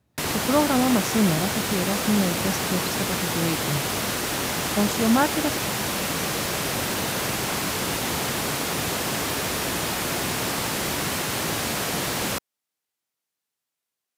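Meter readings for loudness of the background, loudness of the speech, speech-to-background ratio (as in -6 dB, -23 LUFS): -25.0 LUFS, -25.5 LUFS, -0.5 dB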